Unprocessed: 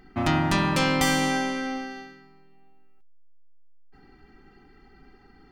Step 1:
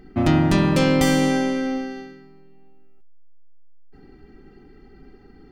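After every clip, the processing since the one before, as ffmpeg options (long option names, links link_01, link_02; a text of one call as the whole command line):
ffmpeg -i in.wav -af "lowshelf=frequency=670:width_type=q:width=1.5:gain=6.5" out.wav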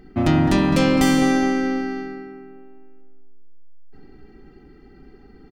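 ffmpeg -i in.wav -filter_complex "[0:a]asplit=2[link_01][link_02];[link_02]adelay=209,lowpass=frequency=2000:poles=1,volume=-7.5dB,asplit=2[link_03][link_04];[link_04]adelay=209,lowpass=frequency=2000:poles=1,volume=0.52,asplit=2[link_05][link_06];[link_06]adelay=209,lowpass=frequency=2000:poles=1,volume=0.52,asplit=2[link_07][link_08];[link_08]adelay=209,lowpass=frequency=2000:poles=1,volume=0.52,asplit=2[link_09][link_10];[link_10]adelay=209,lowpass=frequency=2000:poles=1,volume=0.52,asplit=2[link_11][link_12];[link_12]adelay=209,lowpass=frequency=2000:poles=1,volume=0.52[link_13];[link_01][link_03][link_05][link_07][link_09][link_11][link_13]amix=inputs=7:normalize=0" out.wav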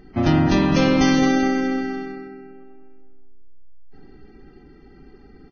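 ffmpeg -i in.wav -ar 16000 -c:a libvorbis -b:a 16k out.ogg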